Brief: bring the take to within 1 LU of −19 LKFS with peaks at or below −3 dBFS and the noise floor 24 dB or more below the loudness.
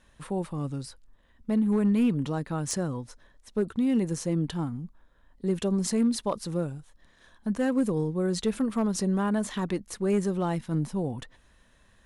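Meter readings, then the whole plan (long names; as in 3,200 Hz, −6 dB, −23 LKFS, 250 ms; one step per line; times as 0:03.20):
share of clipped samples 0.4%; peaks flattened at −18.0 dBFS; integrated loudness −28.5 LKFS; sample peak −18.0 dBFS; target loudness −19.0 LKFS
→ clipped peaks rebuilt −18 dBFS
level +9.5 dB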